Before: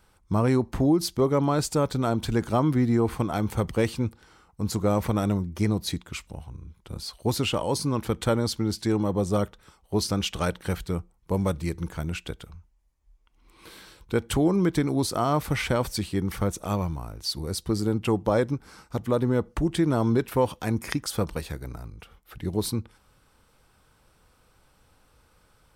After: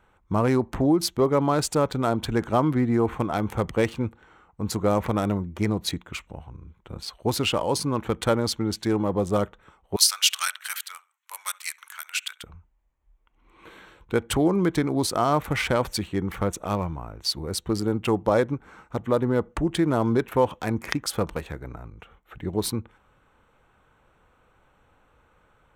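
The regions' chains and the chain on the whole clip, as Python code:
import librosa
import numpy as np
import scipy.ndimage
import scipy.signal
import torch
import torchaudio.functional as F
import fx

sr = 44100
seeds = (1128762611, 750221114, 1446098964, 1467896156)

y = fx.chain(x, sr, fx.highpass(hz=1200.0, slope=24),
    fx.tilt_eq(slope=3.5),
    fx.echo_feedback(ms=67, feedback_pct=33, wet_db=-21), at=(9.96, 12.44))
y = fx.wiener(y, sr, points=9)
y = fx.low_shelf(y, sr, hz=300.0, db=-6.5)
y = F.gain(torch.from_numpy(y), 4.0).numpy()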